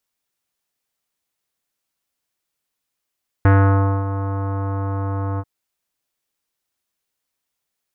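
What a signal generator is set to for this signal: synth note square G2 24 dB/octave, low-pass 1.2 kHz, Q 1.9, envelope 0.5 oct, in 0.39 s, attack 1.6 ms, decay 0.59 s, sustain -12 dB, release 0.05 s, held 1.94 s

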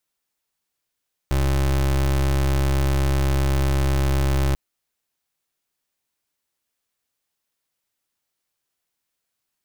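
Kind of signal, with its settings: pulse 67.9 Hz, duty 29% -19.5 dBFS 3.24 s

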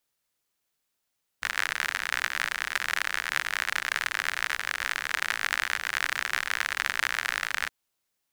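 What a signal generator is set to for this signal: rain from filtered ticks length 6.27 s, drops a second 62, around 1.7 kHz, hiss -23 dB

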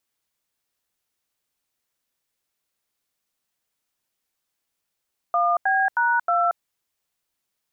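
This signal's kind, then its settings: DTMF "1B#2", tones 229 ms, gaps 85 ms, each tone -20 dBFS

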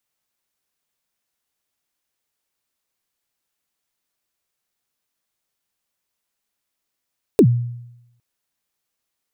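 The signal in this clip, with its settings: kick drum length 0.81 s, from 480 Hz, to 120 Hz, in 71 ms, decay 0.87 s, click on, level -5.5 dB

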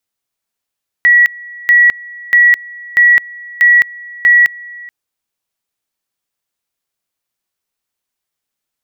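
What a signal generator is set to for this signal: two-level tone 1.93 kHz -4 dBFS, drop 23.5 dB, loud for 0.21 s, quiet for 0.43 s, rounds 6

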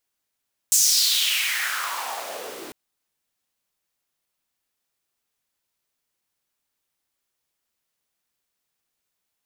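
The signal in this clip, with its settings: swept filtered noise pink, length 2.00 s highpass, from 7.2 kHz, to 310 Hz, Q 3.7, exponential, gain ramp -24 dB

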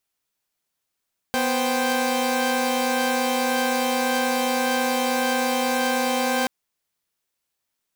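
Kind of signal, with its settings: chord B3/C5/G5 saw, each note -22.5 dBFS 5.13 s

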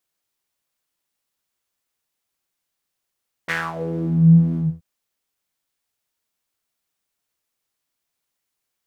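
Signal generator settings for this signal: synth patch with filter wobble E3, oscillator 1 triangle, noise -15 dB, filter bandpass, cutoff 120 Hz, Q 4.7, filter envelope 4 oct, filter decay 0.63 s, filter sustain 20%, attack 19 ms, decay 0.23 s, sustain -12 dB, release 0.25 s, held 1.08 s, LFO 2.1 Hz, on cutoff 0.3 oct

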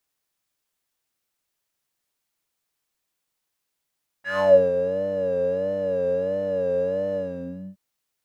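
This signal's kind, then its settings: synth patch with vibrato F#3, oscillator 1 triangle, oscillator 2 square, interval +19 st, oscillator 2 level -2 dB, sub -3.5 dB, noise -14 dB, filter bandpass, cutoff 170 Hz, Q 5.4, filter envelope 3.5 oct, filter decay 0.35 s, attack 153 ms, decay 0.33 s, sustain -9.5 dB, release 0.60 s, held 2.92 s, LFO 1.5 Hz, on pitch 81 cents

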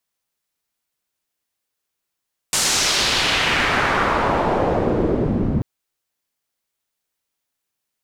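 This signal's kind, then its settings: swept filtered noise white, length 3.09 s lowpass, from 8.3 kHz, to 190 Hz, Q 1.4, exponential, gain ramp +16 dB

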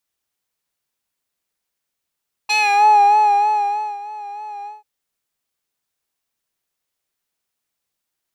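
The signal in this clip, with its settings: synth patch with vibrato G#5, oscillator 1 square, oscillator 2 saw, interval +12 st, detune 30 cents, oscillator 2 level -16 dB, sub -14 dB, noise -23.5 dB, filter bandpass, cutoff 640 Hz, Q 1.5, filter envelope 2.5 oct, filter decay 0.39 s, filter sustain 15%, attack 14 ms, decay 1.48 s, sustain -22.5 dB, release 0.17 s, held 2.17 s, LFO 3.2 Hz, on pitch 46 cents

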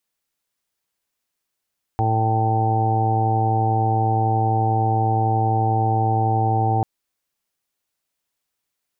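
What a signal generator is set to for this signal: steady additive tone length 4.84 s, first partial 111 Hz, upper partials -13/-9/-10/-18/-17.5/-0.5/-11 dB, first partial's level -19.5 dB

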